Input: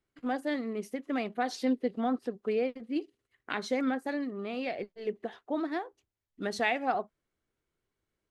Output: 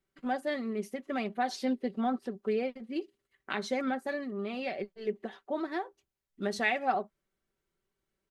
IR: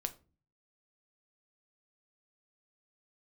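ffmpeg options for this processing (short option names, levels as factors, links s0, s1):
-af "aecho=1:1:5.2:0.51,volume=0.891"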